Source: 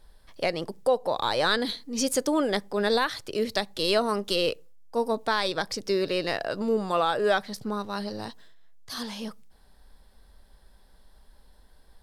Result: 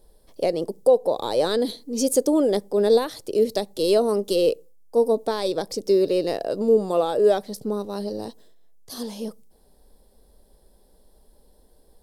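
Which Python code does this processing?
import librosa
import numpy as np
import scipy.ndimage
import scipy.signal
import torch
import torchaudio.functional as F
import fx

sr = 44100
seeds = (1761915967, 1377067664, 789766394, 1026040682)

y = fx.curve_eq(x, sr, hz=(110.0, 460.0, 1500.0, 2200.0, 11000.0), db=(0, 11, -9, -7, 8))
y = y * 10.0 ** (-2.0 / 20.0)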